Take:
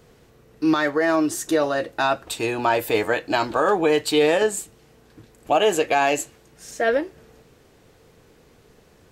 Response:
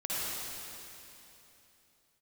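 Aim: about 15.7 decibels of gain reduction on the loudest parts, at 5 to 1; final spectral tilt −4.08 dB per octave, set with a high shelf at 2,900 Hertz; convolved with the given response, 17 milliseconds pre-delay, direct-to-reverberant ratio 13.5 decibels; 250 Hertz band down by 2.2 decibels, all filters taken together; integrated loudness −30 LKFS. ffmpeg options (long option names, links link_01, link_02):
-filter_complex "[0:a]equalizer=frequency=250:width_type=o:gain=-3,highshelf=frequency=2900:gain=-8,acompressor=threshold=-34dB:ratio=5,asplit=2[link_01][link_02];[1:a]atrim=start_sample=2205,adelay=17[link_03];[link_02][link_03]afir=irnorm=-1:irlink=0,volume=-20.5dB[link_04];[link_01][link_04]amix=inputs=2:normalize=0,volume=7dB"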